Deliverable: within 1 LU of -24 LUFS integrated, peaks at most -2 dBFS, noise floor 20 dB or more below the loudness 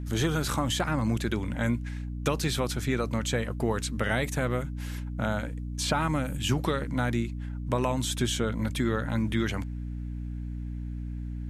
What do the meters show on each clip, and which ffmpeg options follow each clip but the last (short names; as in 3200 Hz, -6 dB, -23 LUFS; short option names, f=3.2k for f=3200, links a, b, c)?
hum 60 Hz; harmonics up to 300 Hz; hum level -32 dBFS; loudness -30.0 LUFS; peak -13.5 dBFS; loudness target -24.0 LUFS
-> -af "bandreject=f=60:t=h:w=6,bandreject=f=120:t=h:w=6,bandreject=f=180:t=h:w=6,bandreject=f=240:t=h:w=6,bandreject=f=300:t=h:w=6"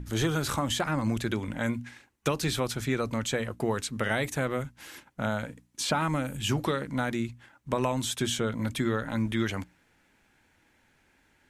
hum none; loudness -30.0 LUFS; peak -14.5 dBFS; loudness target -24.0 LUFS
-> -af "volume=6dB"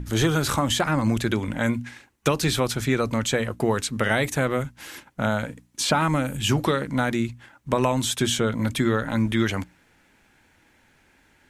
loudness -24.0 LUFS; peak -8.5 dBFS; noise floor -61 dBFS